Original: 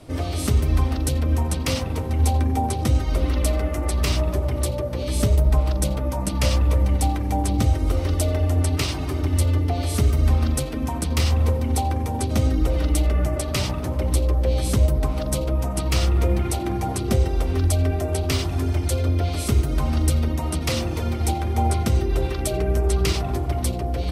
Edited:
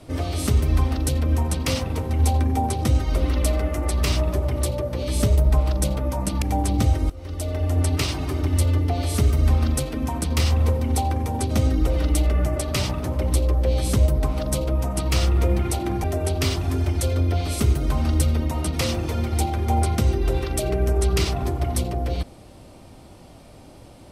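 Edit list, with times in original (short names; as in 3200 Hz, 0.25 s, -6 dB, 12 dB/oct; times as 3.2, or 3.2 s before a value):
6.42–7.22 cut
7.9–8.63 fade in, from -23.5 dB
16.84–17.92 cut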